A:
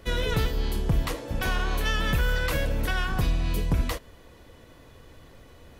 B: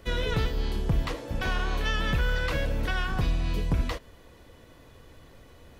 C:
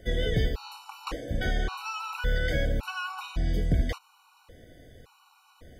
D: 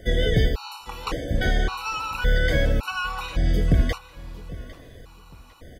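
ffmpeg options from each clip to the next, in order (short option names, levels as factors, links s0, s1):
-filter_complex "[0:a]acrossover=split=6100[s0][s1];[s1]acompressor=threshold=0.002:ratio=4:attack=1:release=60[s2];[s0][s2]amix=inputs=2:normalize=0,volume=0.841"
-af "afftfilt=real='re*gt(sin(2*PI*0.89*pts/sr)*(1-2*mod(floor(b*sr/1024/750),2)),0)':imag='im*gt(sin(2*PI*0.89*pts/sr)*(1-2*mod(floor(b*sr/1024/750),2)),0)':win_size=1024:overlap=0.75,volume=1.19"
-af "aecho=1:1:803|1606:0.126|0.0352,volume=2"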